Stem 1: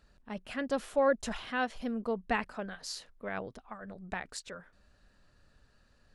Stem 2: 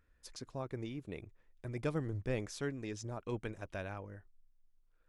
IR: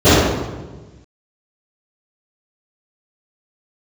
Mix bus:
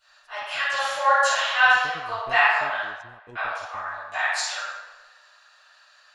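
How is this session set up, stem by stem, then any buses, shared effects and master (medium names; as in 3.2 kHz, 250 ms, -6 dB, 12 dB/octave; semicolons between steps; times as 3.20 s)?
+0.5 dB, 0.00 s, muted 2.83–3.35 s, send -8 dB, Bessel high-pass 1.5 kHz, order 8
1.36 s -20 dB -> 2.02 s -10 dB, 0.00 s, no send, transient shaper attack +4 dB, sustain -11 dB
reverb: on, RT60 1.3 s, pre-delay 3 ms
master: none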